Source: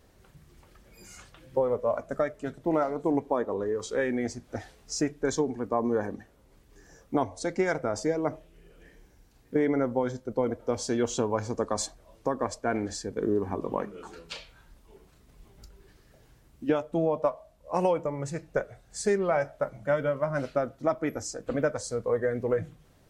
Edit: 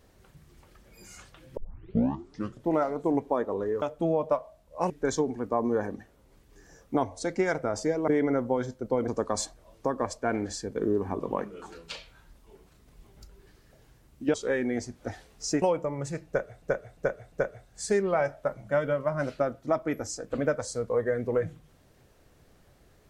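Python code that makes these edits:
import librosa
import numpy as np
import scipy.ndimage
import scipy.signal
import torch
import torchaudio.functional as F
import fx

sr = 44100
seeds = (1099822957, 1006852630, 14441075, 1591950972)

y = fx.edit(x, sr, fx.tape_start(start_s=1.57, length_s=1.12),
    fx.swap(start_s=3.82, length_s=1.28, other_s=16.75, other_length_s=1.08),
    fx.cut(start_s=8.28, length_s=1.26),
    fx.cut(start_s=10.54, length_s=0.95),
    fx.repeat(start_s=18.48, length_s=0.35, count=4), tone=tone)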